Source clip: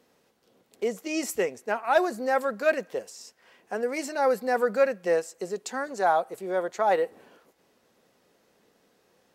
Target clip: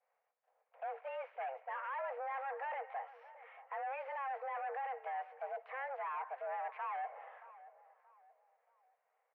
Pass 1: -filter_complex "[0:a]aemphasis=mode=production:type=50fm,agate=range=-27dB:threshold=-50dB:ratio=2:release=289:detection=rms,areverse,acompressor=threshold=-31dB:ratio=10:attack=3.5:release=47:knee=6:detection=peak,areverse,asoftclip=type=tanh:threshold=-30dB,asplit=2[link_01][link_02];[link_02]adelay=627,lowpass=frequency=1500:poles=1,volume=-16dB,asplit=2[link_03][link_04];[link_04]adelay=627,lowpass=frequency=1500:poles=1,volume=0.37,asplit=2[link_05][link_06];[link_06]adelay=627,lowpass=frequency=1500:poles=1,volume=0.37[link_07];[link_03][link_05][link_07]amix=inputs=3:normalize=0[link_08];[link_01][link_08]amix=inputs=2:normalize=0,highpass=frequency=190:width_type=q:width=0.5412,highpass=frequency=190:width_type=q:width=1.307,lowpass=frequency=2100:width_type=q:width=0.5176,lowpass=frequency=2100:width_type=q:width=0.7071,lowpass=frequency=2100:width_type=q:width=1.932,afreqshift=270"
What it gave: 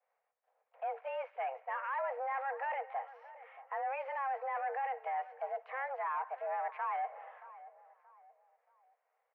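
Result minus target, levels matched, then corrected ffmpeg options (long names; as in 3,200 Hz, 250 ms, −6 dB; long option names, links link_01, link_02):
soft clipping: distortion −8 dB
-filter_complex "[0:a]aemphasis=mode=production:type=50fm,agate=range=-27dB:threshold=-50dB:ratio=2:release=289:detection=rms,areverse,acompressor=threshold=-31dB:ratio=10:attack=3.5:release=47:knee=6:detection=peak,areverse,asoftclip=type=tanh:threshold=-37.5dB,asplit=2[link_01][link_02];[link_02]adelay=627,lowpass=frequency=1500:poles=1,volume=-16dB,asplit=2[link_03][link_04];[link_04]adelay=627,lowpass=frequency=1500:poles=1,volume=0.37,asplit=2[link_05][link_06];[link_06]adelay=627,lowpass=frequency=1500:poles=1,volume=0.37[link_07];[link_03][link_05][link_07]amix=inputs=3:normalize=0[link_08];[link_01][link_08]amix=inputs=2:normalize=0,highpass=frequency=190:width_type=q:width=0.5412,highpass=frequency=190:width_type=q:width=1.307,lowpass=frequency=2100:width_type=q:width=0.5176,lowpass=frequency=2100:width_type=q:width=0.7071,lowpass=frequency=2100:width_type=q:width=1.932,afreqshift=270"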